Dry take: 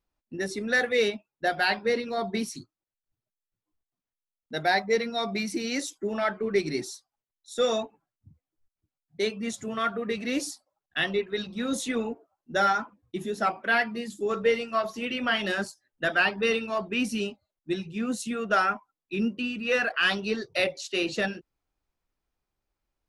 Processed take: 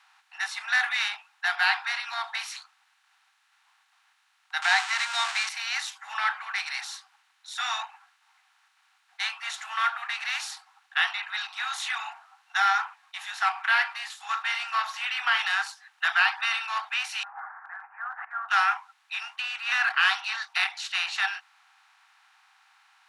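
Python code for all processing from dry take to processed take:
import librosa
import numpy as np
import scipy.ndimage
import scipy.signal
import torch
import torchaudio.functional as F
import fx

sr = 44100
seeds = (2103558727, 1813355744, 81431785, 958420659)

y = fx.chain(x, sr, fx.crossing_spikes(level_db=-24.0),
    fx.steep_lowpass(hz=8700.0, slope=48),
    fx.leveller(passes=1), at=(4.62, 5.49))
y = fx.chain(y, sr, fx.steep_lowpass(hz=1700.0, slope=96),
    fx.pre_swell(db_per_s=35.0), at=(17.23, 18.49))
y = fx.bin_compress(y, sr, power=0.6)
y = scipy.signal.sosfilt(scipy.signal.butter(16, 790.0, 'highpass', fs=sr, output='sos'), y)
y = fx.high_shelf(y, sr, hz=6700.0, db=-10.5)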